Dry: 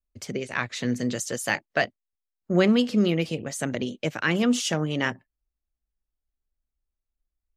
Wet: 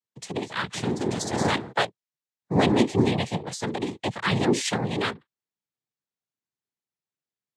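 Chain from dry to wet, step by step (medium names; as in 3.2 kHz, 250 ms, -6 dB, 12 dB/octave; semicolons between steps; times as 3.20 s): 0.73–1.71 s: wind noise 410 Hz -30 dBFS; noise-vocoded speech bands 6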